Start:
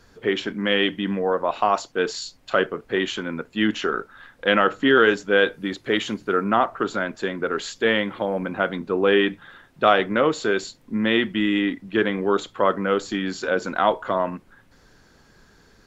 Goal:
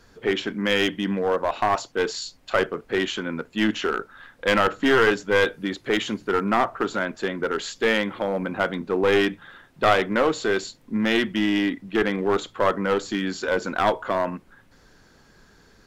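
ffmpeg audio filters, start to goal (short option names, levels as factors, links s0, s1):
-af "aeval=exprs='clip(val(0),-1,0.133)':c=same,bandreject=f=60:t=h:w=6,bandreject=f=120:t=h:w=6"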